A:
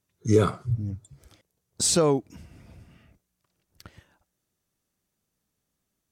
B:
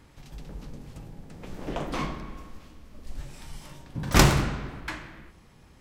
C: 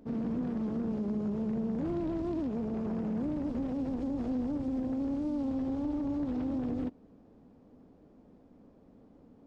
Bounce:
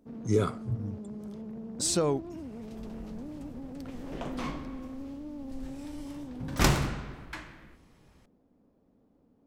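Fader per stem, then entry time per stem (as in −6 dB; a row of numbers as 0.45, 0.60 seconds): −6.0, −6.0, −8.5 decibels; 0.00, 2.45, 0.00 seconds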